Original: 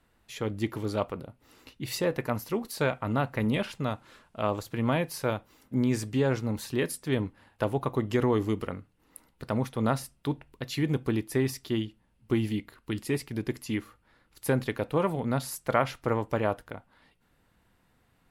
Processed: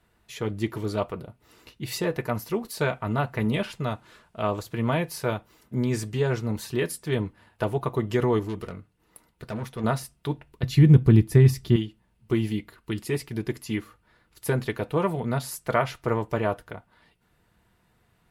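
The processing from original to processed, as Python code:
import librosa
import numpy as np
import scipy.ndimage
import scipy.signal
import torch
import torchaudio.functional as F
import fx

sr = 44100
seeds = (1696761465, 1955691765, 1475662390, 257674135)

y = fx.tube_stage(x, sr, drive_db=29.0, bias=0.45, at=(8.39, 9.84))
y = fx.bass_treble(y, sr, bass_db=15, treble_db=-1, at=(10.63, 11.76))
y = fx.notch_comb(y, sr, f0_hz=270.0)
y = F.gain(torch.from_numpy(y), 3.0).numpy()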